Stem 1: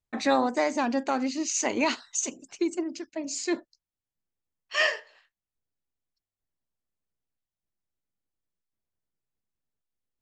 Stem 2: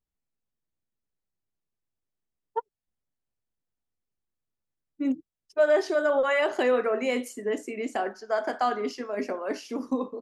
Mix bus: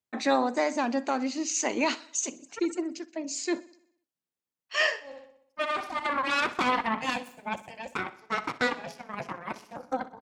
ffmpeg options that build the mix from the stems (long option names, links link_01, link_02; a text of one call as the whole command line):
ffmpeg -i stem1.wav -i stem2.wav -filter_complex "[0:a]volume=-1dB,asplit=3[link_01][link_02][link_03];[link_02]volume=-21dB[link_04];[1:a]bandreject=frequency=60:width_type=h:width=6,bandreject=frequency=120:width_type=h:width=6,bandreject=frequency=180:width_type=h:width=6,bandreject=frequency=240:width_type=h:width=6,bandreject=frequency=300:width_type=h:width=6,bandreject=frequency=360:width_type=h:width=6,bandreject=frequency=420:width_type=h:width=6,aeval=exprs='0.237*(cos(1*acos(clip(val(0)/0.237,-1,1)))-cos(1*PI/2))+0.106*(cos(3*acos(clip(val(0)/0.237,-1,1)))-cos(3*PI/2))+0.0944*(cos(4*acos(clip(val(0)/0.237,-1,1)))-cos(4*PI/2))+0.0168*(cos(5*acos(clip(val(0)/0.237,-1,1)))-cos(5*PI/2))+0.00473*(cos(7*acos(clip(val(0)/0.237,-1,1)))-cos(7*PI/2))':channel_layout=same,volume=0.5dB,asplit=2[link_05][link_06];[link_06]volume=-16.5dB[link_07];[link_03]apad=whole_len=450313[link_08];[link_05][link_08]sidechaincompress=threshold=-37dB:ratio=8:attack=8.9:release=1290[link_09];[link_04][link_07]amix=inputs=2:normalize=0,aecho=0:1:62|124|186|248|310|372|434|496:1|0.55|0.303|0.166|0.0915|0.0503|0.0277|0.0152[link_10];[link_01][link_09][link_10]amix=inputs=3:normalize=0,highpass=160" out.wav